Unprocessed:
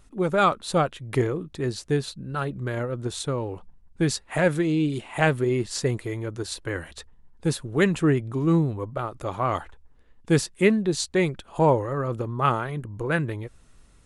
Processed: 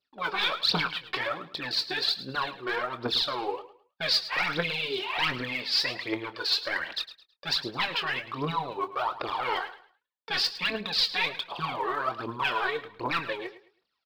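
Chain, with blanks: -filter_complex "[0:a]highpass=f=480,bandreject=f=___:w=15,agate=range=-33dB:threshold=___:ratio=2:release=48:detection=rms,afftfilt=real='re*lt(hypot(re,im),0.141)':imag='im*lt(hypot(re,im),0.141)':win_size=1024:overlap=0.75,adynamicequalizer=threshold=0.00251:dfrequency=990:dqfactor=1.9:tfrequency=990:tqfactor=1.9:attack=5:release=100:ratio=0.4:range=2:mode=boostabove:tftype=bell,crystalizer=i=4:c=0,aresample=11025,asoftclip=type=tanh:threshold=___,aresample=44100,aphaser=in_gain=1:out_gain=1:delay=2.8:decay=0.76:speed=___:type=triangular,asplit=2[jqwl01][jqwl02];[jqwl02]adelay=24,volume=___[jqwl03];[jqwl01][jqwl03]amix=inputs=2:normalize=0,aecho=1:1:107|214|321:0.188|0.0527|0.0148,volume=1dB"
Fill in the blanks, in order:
2000, -52dB, -24dB, 1.3, -12dB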